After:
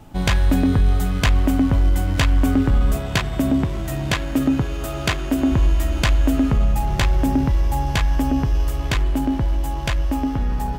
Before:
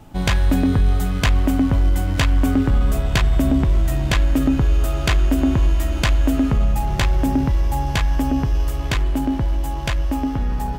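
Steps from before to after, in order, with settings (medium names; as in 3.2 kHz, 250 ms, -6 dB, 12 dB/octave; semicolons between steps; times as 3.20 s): 2.96–5.51 s: high-pass 93 Hz 12 dB/octave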